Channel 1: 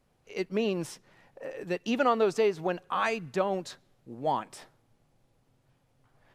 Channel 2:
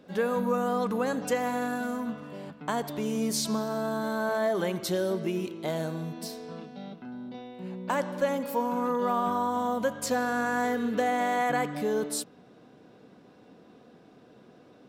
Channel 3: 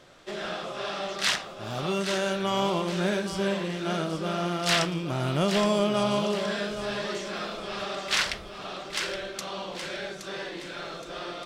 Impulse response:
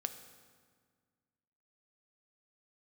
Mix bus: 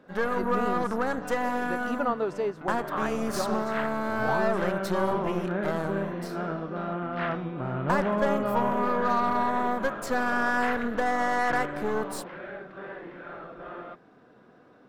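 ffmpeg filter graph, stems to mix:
-filter_complex "[0:a]volume=-4dB[a];[1:a]equalizer=f=1.9k:w=0.68:g=7.5,aeval=exprs='0.282*(cos(1*acos(clip(val(0)/0.282,-1,1)))-cos(1*PI/2))+0.0316*(cos(8*acos(clip(val(0)/0.282,-1,1)))-cos(8*PI/2))':c=same,volume=-3dB[b];[2:a]lowpass=f=2.5k:w=0.5412,lowpass=f=2.5k:w=1.3066,adelay=2500,volume=-3.5dB[c];[a][b][c]amix=inputs=3:normalize=0,highshelf=f=1.9k:t=q:w=1.5:g=-6"

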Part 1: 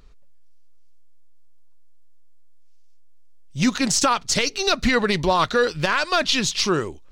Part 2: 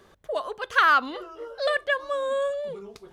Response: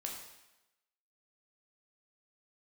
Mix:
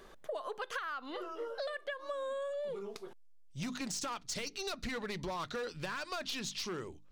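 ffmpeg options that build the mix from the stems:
-filter_complex "[0:a]bandreject=f=50:t=h:w=6,bandreject=f=100:t=h:w=6,bandreject=f=150:t=h:w=6,bandreject=f=200:t=h:w=6,bandreject=f=250:t=h:w=6,bandreject=f=300:t=h:w=6,volume=16.5dB,asoftclip=hard,volume=-16.5dB,volume=-12.5dB[a];[1:a]highpass=190,acompressor=threshold=-30dB:ratio=6,volume=-0.5dB[b];[a][b]amix=inputs=2:normalize=0,acompressor=threshold=-36dB:ratio=6"

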